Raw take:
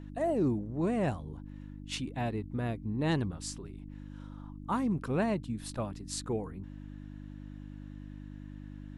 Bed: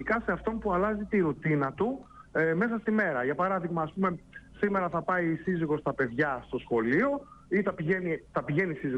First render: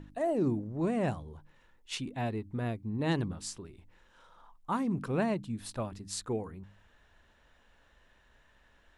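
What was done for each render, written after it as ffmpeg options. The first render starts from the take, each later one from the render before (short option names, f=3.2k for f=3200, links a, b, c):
-af "bandreject=f=50:t=h:w=4,bandreject=f=100:t=h:w=4,bandreject=f=150:t=h:w=4,bandreject=f=200:t=h:w=4,bandreject=f=250:t=h:w=4,bandreject=f=300:t=h:w=4"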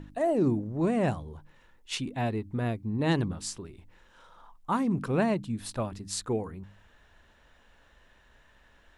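-af "volume=4dB"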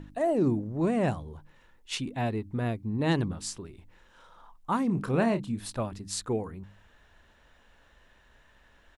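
-filter_complex "[0:a]asplit=3[a][b][c];[a]afade=t=out:st=4.88:d=0.02[d];[b]asplit=2[e][f];[f]adelay=30,volume=-9dB[g];[e][g]amix=inputs=2:normalize=0,afade=t=in:st=4.88:d=0.02,afade=t=out:st=5.64:d=0.02[h];[c]afade=t=in:st=5.64:d=0.02[i];[d][h][i]amix=inputs=3:normalize=0"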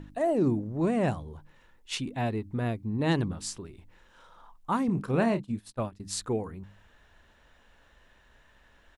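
-filter_complex "[0:a]asettb=1/sr,asplit=3[a][b][c];[a]atrim=end=4.884[d];[b]atrim=start=4.88:end=6,asetpts=PTS-STARTPTS,afade=t=in:d=0.004:c=qsin,afade=t=out:st=1.116:d=0.004:c=qsin,agate=range=-33dB:threshold=-32dB:ratio=3:release=100:detection=peak[e];[c]atrim=start=5.996[f];[d][e]acrossfade=d=0.004:c1=hsin:c2=qsin[g];[g][f]acrossfade=d=0.004:c1=qsin:c2=hsin"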